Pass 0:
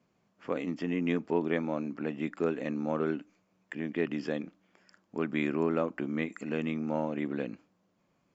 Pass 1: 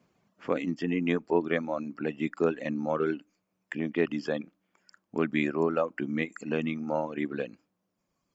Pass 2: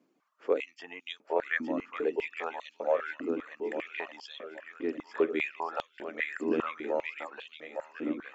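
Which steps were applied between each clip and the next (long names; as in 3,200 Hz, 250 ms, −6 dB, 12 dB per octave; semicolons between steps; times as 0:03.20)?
reverb reduction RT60 1.7 s; level +4.5 dB
feedback echo with a long and a short gap by turns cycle 1,434 ms, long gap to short 1.5 to 1, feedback 41%, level −6 dB; high-pass on a step sequencer 5 Hz 290–3,400 Hz; level −6.5 dB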